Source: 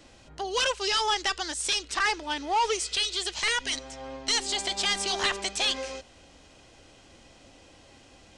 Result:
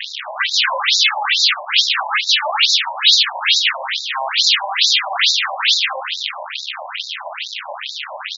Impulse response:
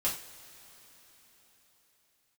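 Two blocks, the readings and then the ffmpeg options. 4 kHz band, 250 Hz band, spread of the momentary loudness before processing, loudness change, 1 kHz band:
+15.0 dB, below −35 dB, 8 LU, +12.5 dB, +8.0 dB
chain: -filter_complex "[0:a]asplit=2[link_01][link_02];[link_02]acompressor=threshold=-36dB:ratio=6,volume=-1.5dB[link_03];[link_01][link_03]amix=inputs=2:normalize=0,equalizer=frequency=180:width=0.68:gain=9.5,asplit=2[link_04][link_05];[link_05]adelay=13,volume=-10dB[link_06];[link_04][link_06]amix=inputs=2:normalize=0,asplit=2[link_07][link_08];[link_08]adelay=89,lowpass=frequency=2300:poles=1,volume=-11.5dB,asplit=2[link_09][link_10];[link_10]adelay=89,lowpass=frequency=2300:poles=1,volume=0.52,asplit=2[link_11][link_12];[link_12]adelay=89,lowpass=frequency=2300:poles=1,volume=0.52,asplit=2[link_13][link_14];[link_14]adelay=89,lowpass=frequency=2300:poles=1,volume=0.52,asplit=2[link_15][link_16];[link_16]adelay=89,lowpass=frequency=2300:poles=1,volume=0.52,asplit=2[link_17][link_18];[link_18]adelay=89,lowpass=frequency=2300:poles=1,volume=0.52[link_19];[link_07][link_09][link_11][link_13][link_15][link_17][link_19]amix=inputs=7:normalize=0,asplit=2[link_20][link_21];[1:a]atrim=start_sample=2205[link_22];[link_21][link_22]afir=irnorm=-1:irlink=0,volume=-17.5dB[link_23];[link_20][link_23]amix=inputs=2:normalize=0,aeval=exprs='0.299*sin(PI/2*6.31*val(0)/0.299)':channel_layout=same,aeval=exprs='0.316*(cos(1*acos(clip(val(0)/0.316,-1,1)))-cos(1*PI/2))+0.0398*(cos(4*acos(clip(val(0)/0.316,-1,1)))-cos(4*PI/2))+0.0708*(cos(8*acos(clip(val(0)/0.316,-1,1)))-cos(8*PI/2))':channel_layout=same,equalizer=frequency=3500:width=0.7:gain=11.5,adynamicsmooth=sensitivity=0.5:basefreq=1400,asoftclip=type=tanh:threshold=-3dB,afftfilt=real='re*between(b*sr/1024,740*pow(5200/740,0.5+0.5*sin(2*PI*2.3*pts/sr))/1.41,740*pow(5200/740,0.5+0.5*sin(2*PI*2.3*pts/sr))*1.41)':imag='im*between(b*sr/1024,740*pow(5200/740,0.5+0.5*sin(2*PI*2.3*pts/sr))/1.41,740*pow(5200/740,0.5+0.5*sin(2*PI*2.3*pts/sr))*1.41)':win_size=1024:overlap=0.75"

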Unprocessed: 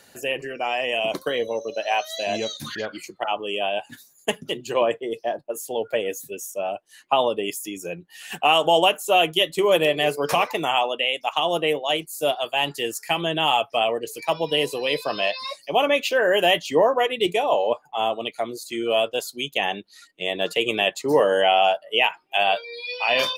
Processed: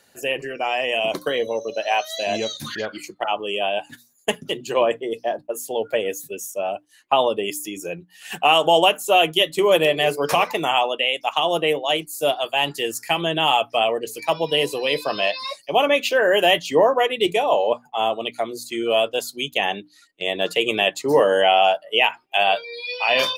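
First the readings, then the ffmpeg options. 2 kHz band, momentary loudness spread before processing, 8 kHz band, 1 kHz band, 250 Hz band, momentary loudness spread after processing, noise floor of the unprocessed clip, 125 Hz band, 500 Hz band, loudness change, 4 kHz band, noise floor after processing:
+2.0 dB, 12 LU, +2.0 dB, +2.0 dB, +1.5 dB, 12 LU, −56 dBFS, +1.5 dB, +2.0 dB, +2.0 dB, +2.0 dB, −57 dBFS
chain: -af "bandreject=frequency=60:width_type=h:width=6,bandreject=frequency=120:width_type=h:width=6,bandreject=frequency=180:width_type=h:width=6,bandreject=frequency=240:width_type=h:width=6,bandreject=frequency=300:width_type=h:width=6,agate=range=-7dB:threshold=-40dB:ratio=16:detection=peak,volume=2dB"

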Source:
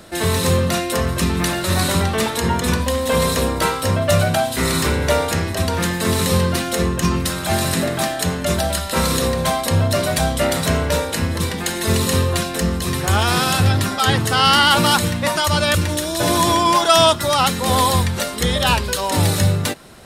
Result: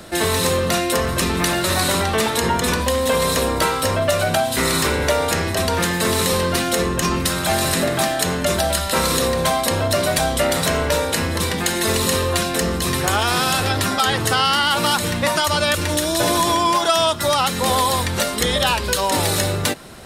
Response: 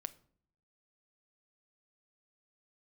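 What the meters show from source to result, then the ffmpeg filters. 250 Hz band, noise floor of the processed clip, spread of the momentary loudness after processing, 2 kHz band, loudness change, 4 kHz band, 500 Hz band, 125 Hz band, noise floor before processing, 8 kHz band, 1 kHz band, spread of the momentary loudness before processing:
−2.0 dB, −24 dBFS, 3 LU, +0.5 dB, −0.5 dB, −0.5 dB, +0.5 dB, −5.5 dB, −26 dBFS, +1.0 dB, −0.5 dB, 6 LU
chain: -filter_complex "[0:a]acrossover=split=300[link_01][link_02];[link_01]asoftclip=type=tanh:threshold=-25.5dB[link_03];[link_03][link_02]amix=inputs=2:normalize=0,acompressor=threshold=-18dB:ratio=5,volume=3.5dB"

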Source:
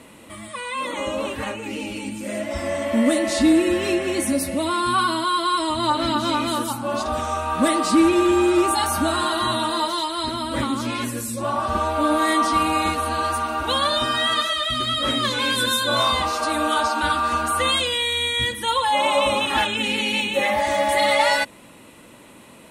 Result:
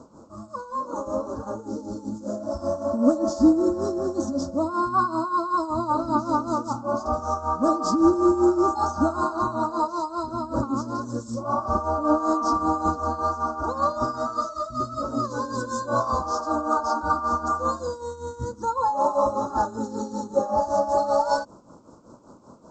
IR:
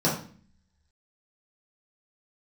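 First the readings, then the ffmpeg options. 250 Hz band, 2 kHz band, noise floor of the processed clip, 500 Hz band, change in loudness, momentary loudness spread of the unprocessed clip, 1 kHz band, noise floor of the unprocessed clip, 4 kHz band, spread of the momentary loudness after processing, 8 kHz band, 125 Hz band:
−2.0 dB, −16.0 dB, −48 dBFS, −2.0 dB, −4.0 dB, 9 LU, −2.0 dB, −46 dBFS, −23.0 dB, 11 LU, −11.5 dB, −2.0 dB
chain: -af "highshelf=frequency=4300:gain=-4,tremolo=f=5.2:d=0.72,asuperstop=centerf=2600:order=12:qfactor=0.75,volume=1.5dB" -ar 16000 -c:a g722

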